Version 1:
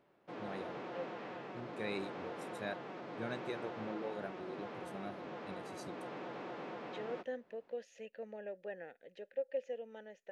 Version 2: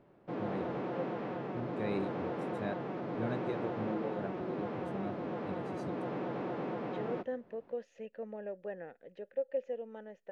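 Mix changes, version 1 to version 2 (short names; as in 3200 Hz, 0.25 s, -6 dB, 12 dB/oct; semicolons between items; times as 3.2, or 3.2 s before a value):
second voice: add bell 1100 Hz +10 dB 0.49 oct; background +4.5 dB; master: add tilt -3 dB/oct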